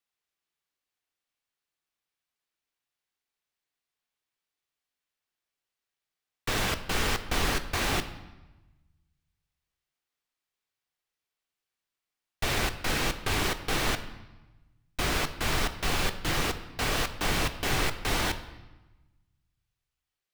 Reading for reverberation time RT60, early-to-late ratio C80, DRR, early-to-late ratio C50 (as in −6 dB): 1.1 s, 14.0 dB, 8.5 dB, 12.5 dB